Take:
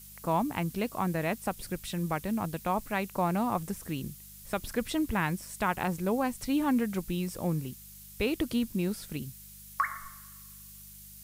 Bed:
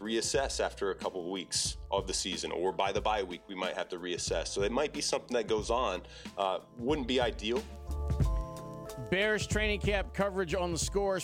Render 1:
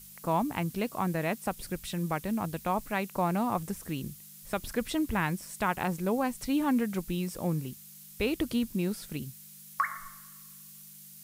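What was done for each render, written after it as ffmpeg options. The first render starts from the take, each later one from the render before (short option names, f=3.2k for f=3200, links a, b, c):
-af "bandreject=f=50:t=h:w=4,bandreject=f=100:t=h:w=4"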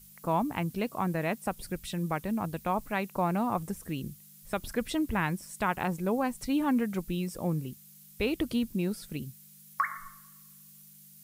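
-af "afftdn=nr=6:nf=-50"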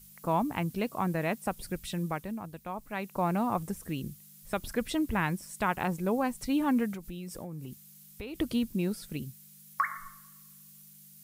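-filter_complex "[0:a]asplit=3[a][b][c];[a]afade=t=out:st=6.93:d=0.02[d];[b]acompressor=threshold=-36dB:ratio=8:attack=3.2:release=140:knee=1:detection=peak,afade=t=in:st=6.93:d=0.02,afade=t=out:st=8.34:d=0.02[e];[c]afade=t=in:st=8.34:d=0.02[f];[d][e][f]amix=inputs=3:normalize=0,asplit=3[g][h][i];[g]atrim=end=2.43,asetpts=PTS-STARTPTS,afade=t=out:st=1.96:d=0.47:silence=0.375837[j];[h]atrim=start=2.43:end=2.81,asetpts=PTS-STARTPTS,volume=-8.5dB[k];[i]atrim=start=2.81,asetpts=PTS-STARTPTS,afade=t=in:d=0.47:silence=0.375837[l];[j][k][l]concat=n=3:v=0:a=1"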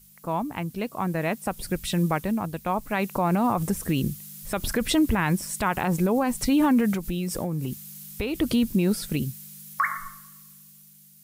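-af "dynaudnorm=f=490:g=7:m=12.5dB,alimiter=limit=-14dB:level=0:latency=1:release=54"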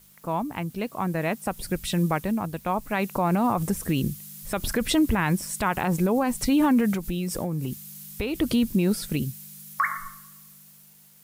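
-af "aeval=exprs='val(0)*gte(abs(val(0)),0.00211)':c=same"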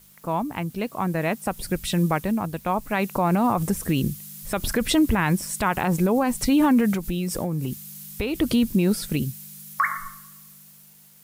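-af "volume=2dB"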